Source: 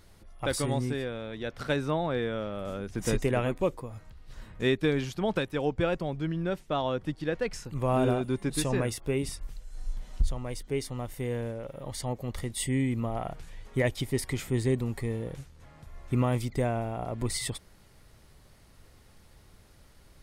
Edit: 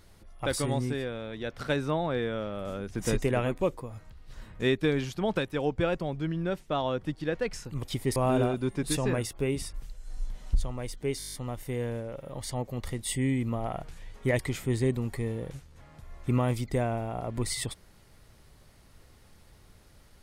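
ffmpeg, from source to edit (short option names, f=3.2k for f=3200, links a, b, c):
-filter_complex "[0:a]asplit=12[a][b][c][d][e][f][g][h][i][j][k][l];[a]atrim=end=7.832[m];[b]atrim=start=13.898:end=14.232[n];[c]atrim=start=7.828:end=10.872[o];[d]atrim=start=10.848:end=10.872[p];[e]atrim=start=10.848:end=10.872[q];[f]atrim=start=10.848:end=10.872[r];[g]atrim=start=10.848:end=10.872[s];[h]atrim=start=10.848:end=10.872[t];[i]atrim=start=10.848:end=10.872[u];[j]atrim=start=10.848:end=10.872[v];[k]atrim=start=10.848:end=13.902[w];[l]atrim=start=14.228[x];[m][n]acrossfade=d=0.004:c1=hsin:c2=hsin[y];[y][o]acrossfade=d=0.004:c1=hsin:c2=hsin[z];[z][p]acrossfade=d=0.004:c1=hsin:c2=hsin[aa];[aa][q]acrossfade=d=0.004:c1=hsin:c2=hsin[ab];[ab][r]acrossfade=d=0.004:c1=hsin:c2=hsin[ac];[ac][s]acrossfade=d=0.004:c1=hsin:c2=hsin[ad];[ad][t]acrossfade=d=0.004:c1=hsin:c2=hsin[ae];[ae][u]acrossfade=d=0.004:c1=hsin:c2=hsin[af];[af][v]acrossfade=d=0.004:c1=hsin:c2=hsin[ag];[ag][w]acrossfade=d=0.004:c1=hsin:c2=hsin[ah];[ah][x]acrossfade=d=0.004:c1=hsin:c2=hsin"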